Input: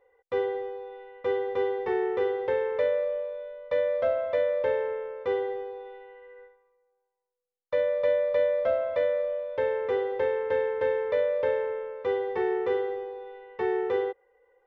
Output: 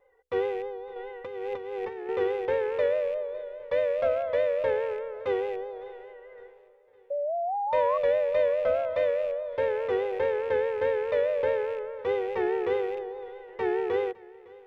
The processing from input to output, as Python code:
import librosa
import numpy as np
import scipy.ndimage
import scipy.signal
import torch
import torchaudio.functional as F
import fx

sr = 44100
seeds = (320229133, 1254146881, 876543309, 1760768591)

y = fx.rattle_buzz(x, sr, strikes_db=-44.0, level_db=-38.0)
y = fx.low_shelf(y, sr, hz=67.0, db=7.5)
y = fx.hum_notches(y, sr, base_hz=60, count=8)
y = fx.over_compress(y, sr, threshold_db=-35.0, ratio=-1.0, at=(0.96, 2.09))
y = fx.spec_paint(y, sr, seeds[0], shape='rise', start_s=7.1, length_s=0.88, low_hz=540.0, high_hz=1100.0, level_db=-29.0)
y = fx.vibrato(y, sr, rate_hz=4.8, depth_cents=64.0)
y = fx.echo_feedback(y, sr, ms=559, feedback_pct=51, wet_db=-22)